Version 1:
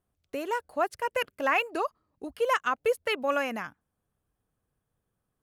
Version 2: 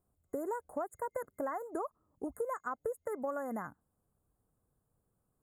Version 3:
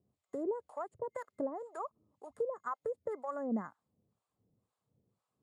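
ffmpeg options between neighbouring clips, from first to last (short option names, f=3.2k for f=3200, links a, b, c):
-af "afftfilt=real='re*(1-between(b*sr/4096,2100,6700))':imag='im*(1-between(b*sr/4096,2100,6700))':win_size=4096:overlap=0.75,equalizer=f=1.9k:t=o:w=0.65:g=-13.5,acompressor=threshold=-35dB:ratio=12,volume=1.5dB"
-filter_complex "[0:a]acrossover=split=3900[a][b];[b]acrusher=bits=2:mode=log:mix=0:aa=0.000001[c];[a][c]amix=inputs=2:normalize=0,acrossover=split=690[d][e];[d]aeval=exprs='val(0)*(1-1/2+1/2*cos(2*PI*2*n/s))':c=same[f];[e]aeval=exprs='val(0)*(1-1/2-1/2*cos(2*PI*2*n/s))':c=same[g];[f][g]amix=inputs=2:normalize=0,highpass=110,equalizer=f=110:t=q:w=4:g=5,equalizer=f=210:t=q:w=4:g=4,equalizer=f=740:t=q:w=4:g=-3,equalizer=f=1.5k:t=q:w=4:g=-7,equalizer=f=5.9k:t=q:w=4:g=-6,lowpass=f=6.9k:w=0.5412,lowpass=f=6.9k:w=1.3066,volume=5dB"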